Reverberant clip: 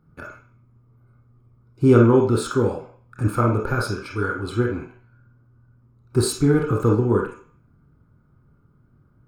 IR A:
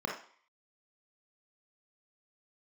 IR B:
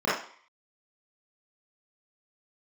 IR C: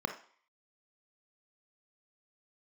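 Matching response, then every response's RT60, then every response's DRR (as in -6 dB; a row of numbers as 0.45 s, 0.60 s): A; 0.50 s, 0.50 s, 0.50 s; -0.5 dB, -10.5 dB, 6.0 dB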